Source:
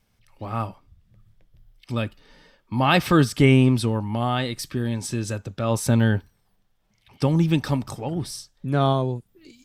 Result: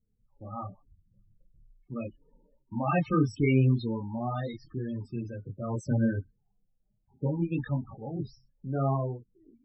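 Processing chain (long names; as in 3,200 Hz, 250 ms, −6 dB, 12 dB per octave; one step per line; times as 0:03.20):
multi-voice chorus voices 6, 0.7 Hz, delay 26 ms, depth 4.9 ms
low-pass that shuts in the quiet parts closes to 710 Hz, open at −21 dBFS
spectral peaks only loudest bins 16
level −5 dB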